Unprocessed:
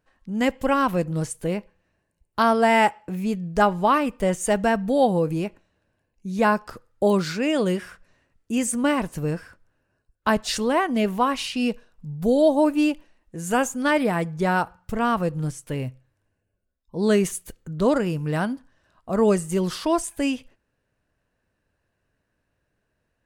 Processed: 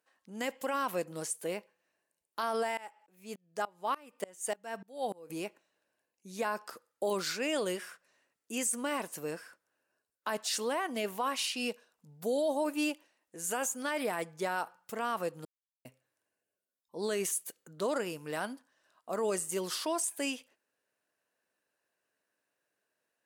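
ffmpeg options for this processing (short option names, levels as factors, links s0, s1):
-filter_complex "[0:a]asettb=1/sr,asplit=3[s0][s1][s2];[s0]atrim=end=2.774[s3];[s1]atrim=start=2.77:end=5.3,asetpts=PTS-STARTPTS,afade=t=in:d=0.004:c=qsin,afade=t=out:st=2.526:d=0.004:c=qsin,aeval=exprs='val(0)*pow(10,-29*if(lt(mod(-3.4*n/s,1),2*abs(-3.4)/1000),1-mod(-3.4*n/s,1)/(2*abs(-3.4)/1000),(mod(-3.4*n/s,1)-2*abs(-3.4)/1000)/(1-2*abs(-3.4)/1000))/20)':c=same[s4];[s2]atrim=start=5.296[s5];[s3][s4]acrossfade=d=0.004:c1=hsin:c2=qsin[s6];[s6][s5]acrossfade=d=0.004:c1=qsin:c2=hsin,asplit=3[s7][s8][s9];[s7]atrim=end=15.45,asetpts=PTS-STARTPTS,afade=t=out:st=15.446:d=0.004:c=hsin[s10];[s8]atrim=start=15.45:end=15.85,asetpts=PTS-STARTPTS,volume=0[s11];[s9]atrim=start=15.85,asetpts=PTS-STARTPTS,afade=t=in:d=0.004:c=hsin[s12];[s10][s11][s12]concat=n=3:v=0:a=1,highpass=380,aemphasis=mode=production:type=cd,alimiter=limit=0.15:level=0:latency=1:release=22,volume=0.473"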